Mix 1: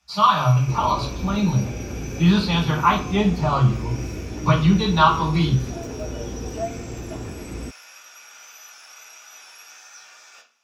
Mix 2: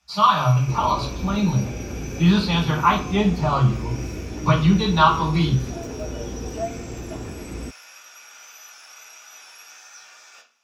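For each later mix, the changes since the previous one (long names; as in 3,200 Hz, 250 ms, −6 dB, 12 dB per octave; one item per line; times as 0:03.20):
master: add parametric band 110 Hz −3 dB 0.25 octaves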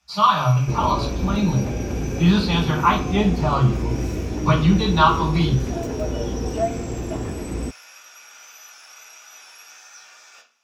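second sound +5.5 dB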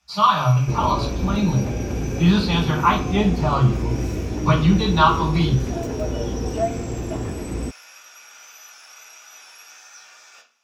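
master: add parametric band 110 Hz +3 dB 0.25 octaves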